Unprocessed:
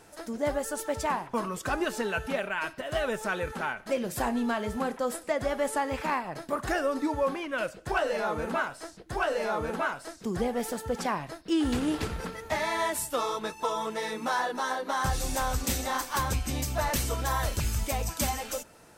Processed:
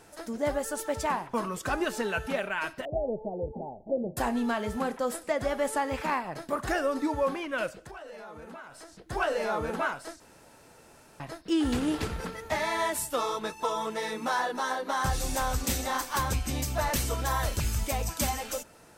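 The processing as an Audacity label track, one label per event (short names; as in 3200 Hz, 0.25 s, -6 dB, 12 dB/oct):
2.850000	4.170000	steep low-pass 810 Hz 72 dB/oct
7.820000	9.070000	compressor 4:1, threshold -44 dBFS
10.200000	11.200000	room tone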